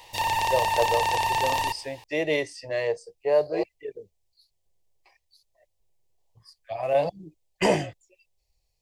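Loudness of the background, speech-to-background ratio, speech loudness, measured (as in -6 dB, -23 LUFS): -25.0 LUFS, -3.0 dB, -28.0 LUFS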